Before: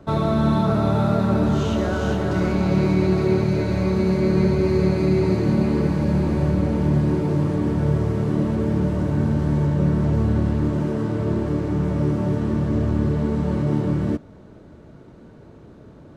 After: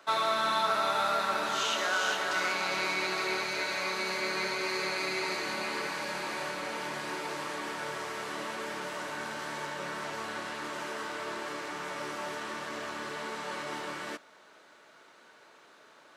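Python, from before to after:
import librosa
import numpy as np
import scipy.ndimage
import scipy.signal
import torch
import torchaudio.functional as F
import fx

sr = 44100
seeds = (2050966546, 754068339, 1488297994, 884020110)

y = scipy.signal.sosfilt(scipy.signal.butter(2, 1400.0, 'highpass', fs=sr, output='sos'), x)
y = y * 10.0 ** (6.0 / 20.0)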